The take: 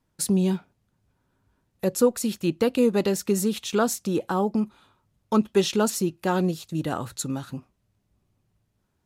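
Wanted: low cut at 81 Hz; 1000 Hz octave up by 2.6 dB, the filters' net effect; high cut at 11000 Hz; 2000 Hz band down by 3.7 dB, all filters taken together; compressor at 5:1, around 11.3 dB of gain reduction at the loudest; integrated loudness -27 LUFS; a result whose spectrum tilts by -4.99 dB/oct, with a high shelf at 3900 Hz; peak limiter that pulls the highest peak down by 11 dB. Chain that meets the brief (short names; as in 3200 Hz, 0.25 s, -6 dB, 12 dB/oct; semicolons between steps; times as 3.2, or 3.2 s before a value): HPF 81 Hz; LPF 11000 Hz; bell 1000 Hz +5.5 dB; bell 2000 Hz -7.5 dB; high shelf 3900 Hz -4.5 dB; compressor 5:1, threshold -27 dBFS; gain +10 dB; limiter -17 dBFS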